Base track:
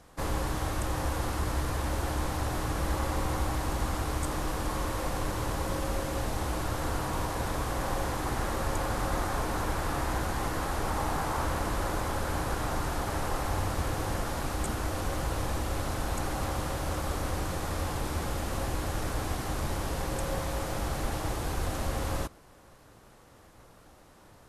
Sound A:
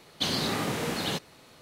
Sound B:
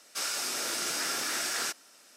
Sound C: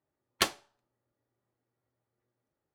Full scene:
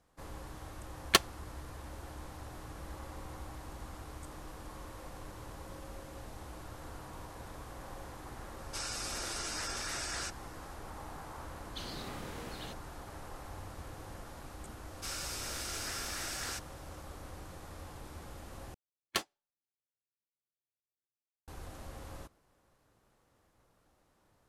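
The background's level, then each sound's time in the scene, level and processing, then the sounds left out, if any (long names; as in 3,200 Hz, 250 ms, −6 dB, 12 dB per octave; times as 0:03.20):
base track −15.5 dB
0:00.73: mix in C −7.5 dB + transient designer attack +11 dB, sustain −5 dB
0:08.58: mix in B −6.5 dB + gate on every frequency bin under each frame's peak −15 dB strong
0:11.55: mix in A −16 dB
0:14.87: mix in B −8 dB
0:18.74: overwrite with C −6.5 dB + noise reduction from a noise print of the clip's start 21 dB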